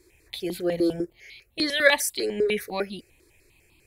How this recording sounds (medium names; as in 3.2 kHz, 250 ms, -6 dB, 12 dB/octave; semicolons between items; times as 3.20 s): notches that jump at a steady rate 10 Hz 760–1700 Hz